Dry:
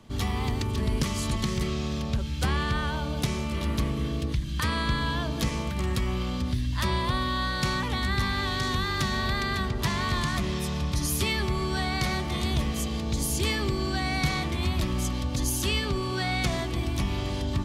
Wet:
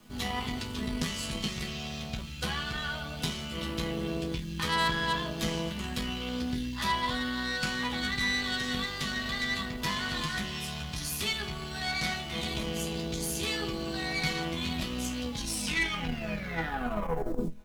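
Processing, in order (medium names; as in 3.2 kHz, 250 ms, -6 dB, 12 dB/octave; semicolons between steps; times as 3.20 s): tape stop on the ending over 2.43 s; dynamic bell 3 kHz, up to +5 dB, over -46 dBFS, Q 0.92; in parallel at -1.5 dB: gain riding within 3 dB 0.5 s; on the sum: word length cut 8-bit, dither none; chord resonator E3 major, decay 0.28 s; Chebyshev shaper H 4 -17 dB, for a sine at -23 dBFS; trim +5 dB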